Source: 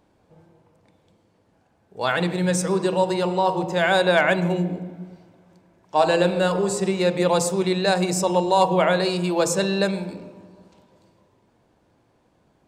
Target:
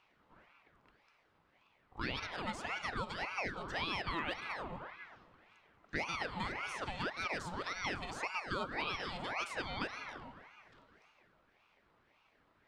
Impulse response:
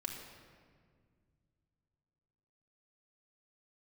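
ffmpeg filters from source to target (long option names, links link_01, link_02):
-filter_complex "[0:a]acrossover=split=520 3900:gain=0.178 1 0.141[link_01][link_02][link_03];[link_01][link_02][link_03]amix=inputs=3:normalize=0,acrossover=split=2400|4900[link_04][link_05][link_06];[link_04]acompressor=threshold=-36dB:ratio=4[link_07];[link_05]acompressor=threshold=-49dB:ratio=4[link_08];[link_06]acompressor=threshold=-55dB:ratio=4[link_09];[link_07][link_08][link_09]amix=inputs=3:normalize=0,aeval=exprs='val(0)*sin(2*PI*1100*n/s+1100*0.7/1.8*sin(2*PI*1.8*n/s))':channel_layout=same"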